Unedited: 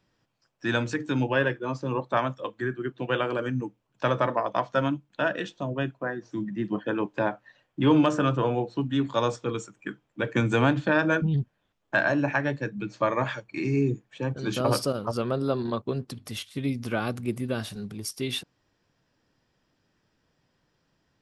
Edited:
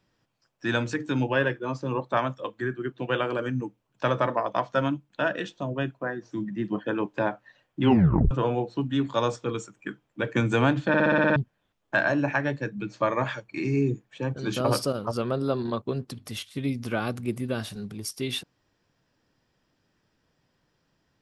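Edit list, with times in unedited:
0:07.84: tape stop 0.47 s
0:10.88: stutter in place 0.06 s, 8 plays

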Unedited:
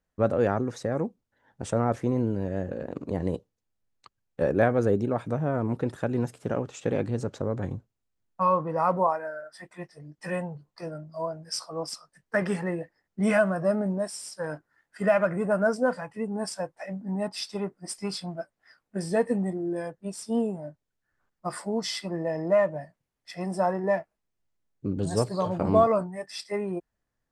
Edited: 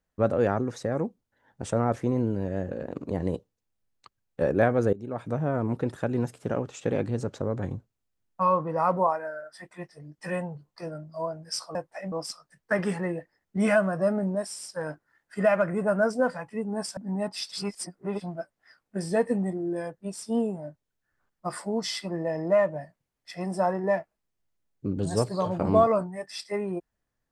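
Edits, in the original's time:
0:04.93–0:05.37: fade in, from −21.5 dB
0:16.60–0:16.97: move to 0:11.75
0:17.52–0:18.21: reverse

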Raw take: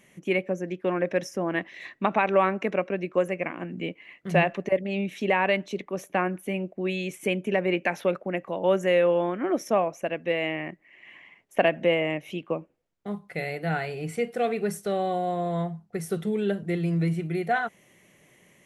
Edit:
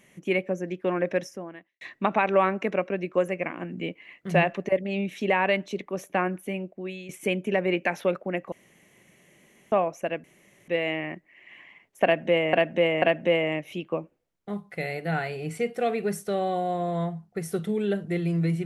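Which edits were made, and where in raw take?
0:01.15–0:01.81: fade out quadratic
0:06.33–0:07.09: fade out, to −12 dB
0:08.52–0:09.72: fill with room tone
0:10.24: splice in room tone 0.44 s
0:11.60–0:12.09: repeat, 3 plays

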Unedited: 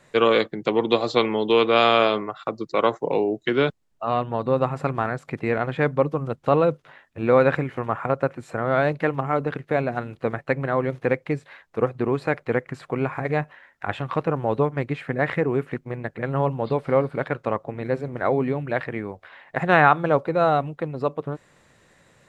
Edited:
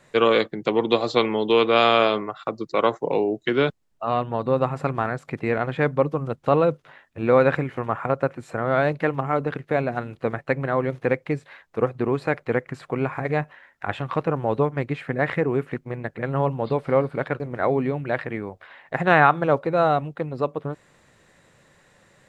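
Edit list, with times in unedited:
0:17.40–0:18.02: remove

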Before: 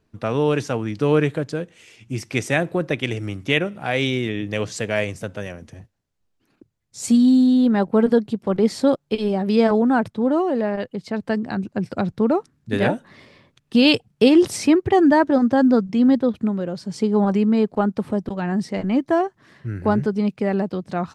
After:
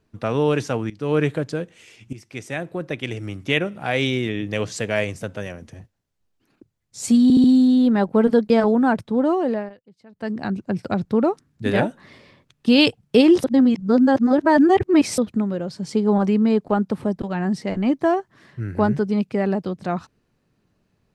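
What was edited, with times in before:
0:00.90–0:01.26: fade in, from −18 dB
0:02.13–0:03.78: fade in, from −15 dB
0:07.23: stutter 0.07 s, 4 plays
0:08.29–0:09.57: remove
0:10.57–0:11.45: duck −22 dB, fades 0.24 s
0:14.51–0:16.25: reverse

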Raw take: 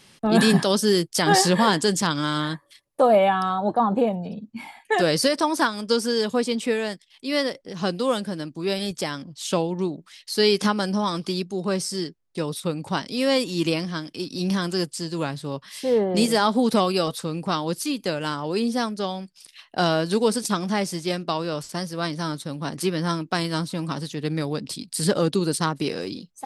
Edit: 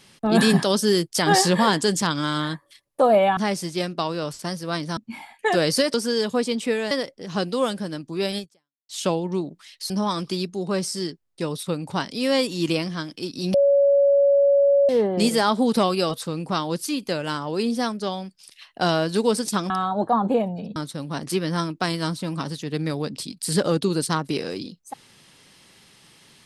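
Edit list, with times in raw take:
0:03.37–0:04.43: swap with 0:20.67–0:22.27
0:05.40–0:05.94: remove
0:06.91–0:07.38: remove
0:08.85–0:09.36: fade out exponential
0:10.37–0:10.87: remove
0:14.51–0:15.86: beep over 562 Hz −13.5 dBFS

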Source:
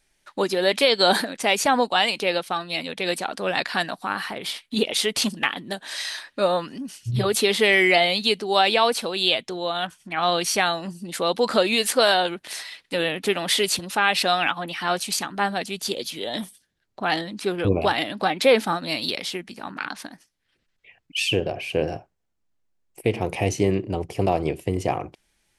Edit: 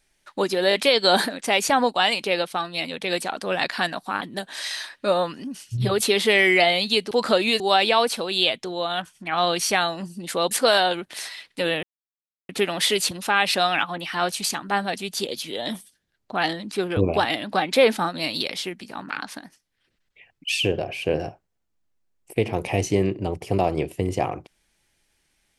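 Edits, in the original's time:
0:00.69: stutter 0.02 s, 3 plays
0:04.17–0:05.55: remove
0:11.36–0:11.85: move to 0:08.45
0:13.17: splice in silence 0.66 s

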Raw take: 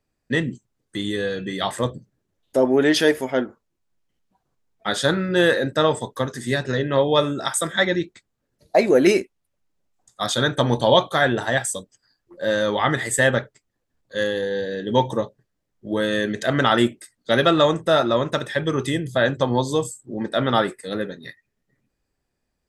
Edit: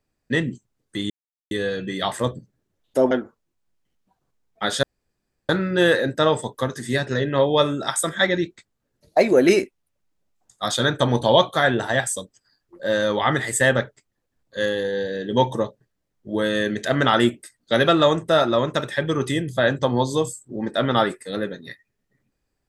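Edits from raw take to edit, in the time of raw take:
0:01.10: splice in silence 0.41 s
0:02.70–0:03.35: remove
0:05.07: splice in room tone 0.66 s

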